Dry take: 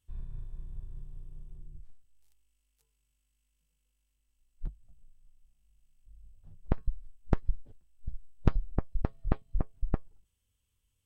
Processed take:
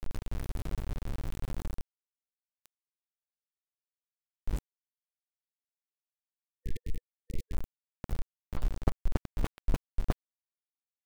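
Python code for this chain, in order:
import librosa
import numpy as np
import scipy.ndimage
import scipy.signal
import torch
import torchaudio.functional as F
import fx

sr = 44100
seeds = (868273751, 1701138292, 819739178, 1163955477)

p1 = fx.tape_start_head(x, sr, length_s=0.38)
p2 = fx.doppler_pass(p1, sr, speed_mps=20, closest_m=14.0, pass_at_s=3.41)
p3 = fx.high_shelf(p2, sr, hz=2300.0, db=3.0)
p4 = p3 + fx.echo_feedback(p3, sr, ms=701, feedback_pct=40, wet_db=-21, dry=0)
p5 = fx.over_compress(p4, sr, threshold_db=-41.0, ratio=-0.5)
p6 = fx.peak_eq(p5, sr, hz=160.0, db=-6.0, octaves=0.23)
p7 = np.where(np.abs(p6) >= 10.0 ** (-49.0 / 20.0), p6, 0.0)
p8 = fx.spec_erase(p7, sr, start_s=6.22, length_s=1.31, low_hz=480.0, high_hz=1800.0)
p9 = fx.record_warp(p8, sr, rpm=78.0, depth_cents=160.0)
y = p9 * librosa.db_to_amplitude(17.5)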